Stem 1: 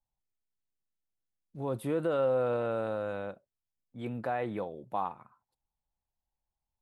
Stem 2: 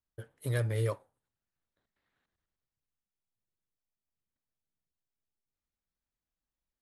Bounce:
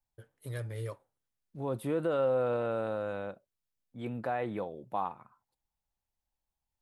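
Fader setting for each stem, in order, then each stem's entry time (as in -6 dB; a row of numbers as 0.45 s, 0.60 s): -0.5 dB, -7.5 dB; 0.00 s, 0.00 s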